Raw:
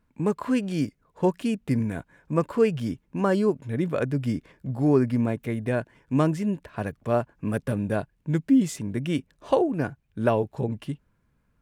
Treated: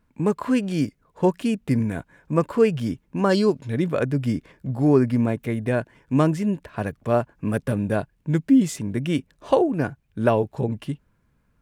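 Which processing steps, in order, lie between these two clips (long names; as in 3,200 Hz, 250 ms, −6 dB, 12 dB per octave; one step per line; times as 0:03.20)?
0:03.29–0:03.84: parametric band 4,500 Hz +14.5 dB → +5 dB 1.1 octaves
level +3 dB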